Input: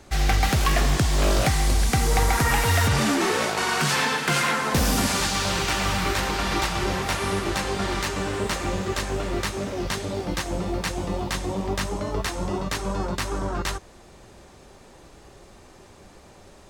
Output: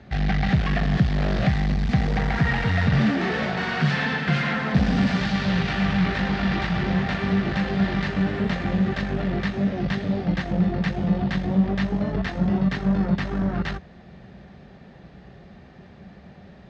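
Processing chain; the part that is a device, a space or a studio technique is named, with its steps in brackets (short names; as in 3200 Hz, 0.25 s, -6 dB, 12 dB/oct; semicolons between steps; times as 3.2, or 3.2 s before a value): guitar amplifier (tube stage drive 23 dB, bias 0.55; tone controls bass +15 dB, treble -1 dB; speaker cabinet 99–4300 Hz, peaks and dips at 100 Hz -10 dB, 190 Hz +6 dB, 320 Hz -5 dB, 700 Hz +5 dB, 1000 Hz -5 dB, 1800 Hz +7 dB)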